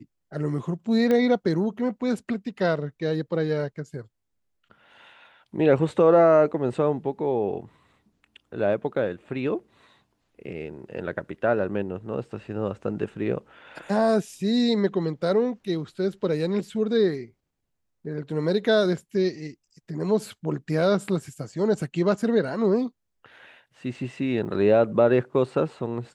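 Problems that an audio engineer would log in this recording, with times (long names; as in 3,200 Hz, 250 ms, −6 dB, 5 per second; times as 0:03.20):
0:01.11: click −13 dBFS
0:24.45: drop-out 2 ms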